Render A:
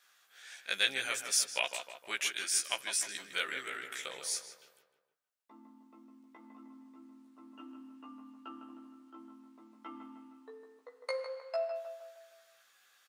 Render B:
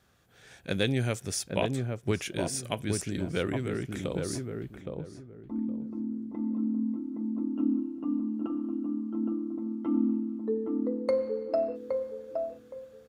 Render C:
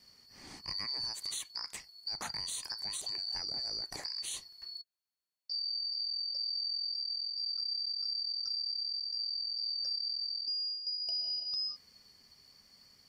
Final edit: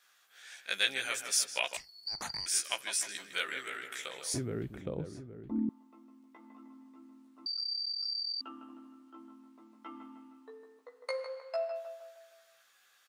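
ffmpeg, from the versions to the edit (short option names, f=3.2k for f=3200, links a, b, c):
-filter_complex "[2:a]asplit=2[a][b];[0:a]asplit=4[c][d][e][f];[c]atrim=end=1.772[g];[a]atrim=start=1.768:end=2.462[h];[d]atrim=start=2.458:end=4.342[i];[1:a]atrim=start=4.338:end=5.692[j];[e]atrim=start=5.688:end=7.462[k];[b]atrim=start=7.458:end=8.412[l];[f]atrim=start=8.408[m];[g][h]acrossfade=d=0.004:c1=hsin:c2=hsin[n];[n][i]acrossfade=d=0.004:c1=hsin:c2=hsin[o];[o][j]acrossfade=d=0.004:c1=hsin:c2=hsin[p];[p][k]acrossfade=d=0.004:c1=hsin:c2=hsin[q];[q][l]acrossfade=d=0.004:c1=hsin:c2=hsin[r];[r][m]acrossfade=d=0.004:c1=hsin:c2=hsin"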